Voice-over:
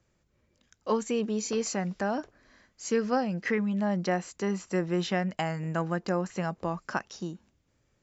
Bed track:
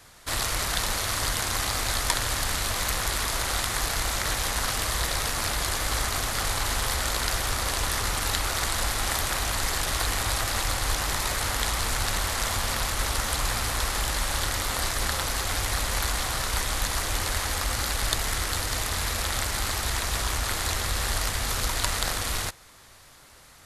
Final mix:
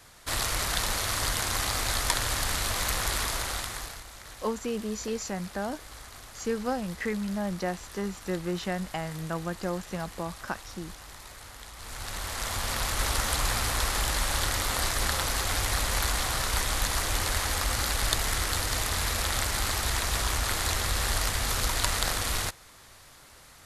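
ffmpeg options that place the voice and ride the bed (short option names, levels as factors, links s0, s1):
-filter_complex "[0:a]adelay=3550,volume=0.708[s0];[1:a]volume=6.68,afade=t=out:st=3.19:d=0.85:silence=0.141254,afade=t=in:st=11.75:d=1.33:silence=0.125893[s1];[s0][s1]amix=inputs=2:normalize=0"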